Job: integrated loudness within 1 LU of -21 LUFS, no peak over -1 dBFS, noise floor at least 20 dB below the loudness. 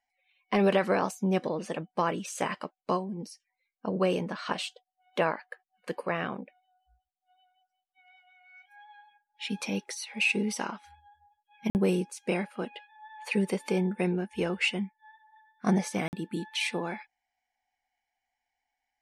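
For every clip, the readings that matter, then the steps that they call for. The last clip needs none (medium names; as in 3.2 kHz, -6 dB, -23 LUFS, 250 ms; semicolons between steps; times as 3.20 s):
dropouts 2; longest dropout 49 ms; loudness -30.5 LUFS; peak level -13.0 dBFS; loudness target -21.0 LUFS
-> interpolate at 11.70/16.08 s, 49 ms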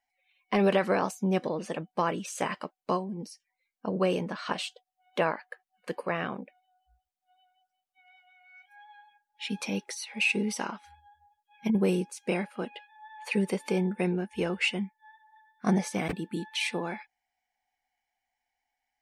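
dropouts 0; loudness -30.5 LUFS; peak level -13.0 dBFS; loudness target -21.0 LUFS
-> trim +9.5 dB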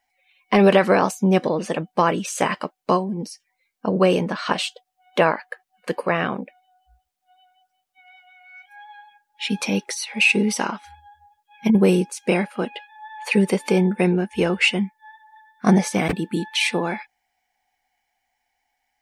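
loudness -21.0 LUFS; peak level -3.5 dBFS; noise floor -76 dBFS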